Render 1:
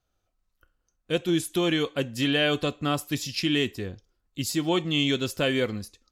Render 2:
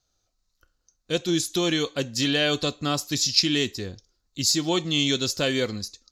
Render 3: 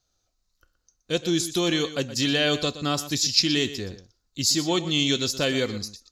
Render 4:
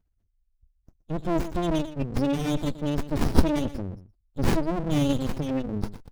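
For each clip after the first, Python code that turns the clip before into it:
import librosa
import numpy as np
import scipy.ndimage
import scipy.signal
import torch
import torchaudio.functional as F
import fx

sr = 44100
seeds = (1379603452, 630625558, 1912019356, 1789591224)

y1 = fx.band_shelf(x, sr, hz=5200.0, db=12.5, octaves=1.1)
y2 = y1 + 10.0 ** (-14.0 / 20.0) * np.pad(y1, (int(121 * sr / 1000.0), 0))[:len(y1)]
y3 = fx.spec_gate(y2, sr, threshold_db=-10, keep='strong')
y3 = fx.brickwall_bandstop(y3, sr, low_hz=370.0, high_hz=2300.0)
y3 = fx.running_max(y3, sr, window=65)
y3 = F.gain(torch.from_numpy(y3), 6.5).numpy()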